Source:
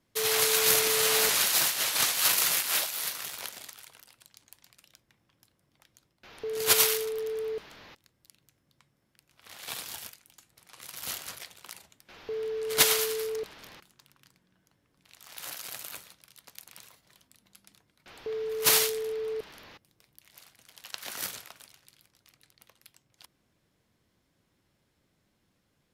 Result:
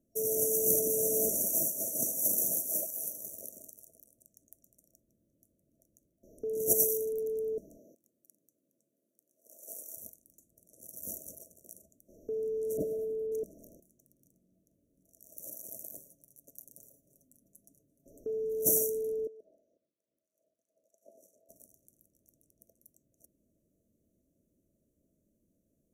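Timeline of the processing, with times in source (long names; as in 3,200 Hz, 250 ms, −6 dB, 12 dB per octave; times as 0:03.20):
0:07.77–0:09.96: high-pass filter 200 Hz → 490 Hz
0:12.77–0:13.32: high-frequency loss of the air 500 metres
0:15.97–0:18.20: comb filter 7.2 ms, depth 54%
0:19.27–0:21.49: LFO wah 3.1 Hz 670–1,700 Hz, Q 2.3
whole clip: octave-band graphic EQ 125/250/500/1,000/4,000/8,000 Hz −7/+4/−5/+11/−11/−4 dB; brick-wall band-stop 670–5,600 Hz; dynamic equaliser 200 Hz, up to +5 dB, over −54 dBFS, Q 0.96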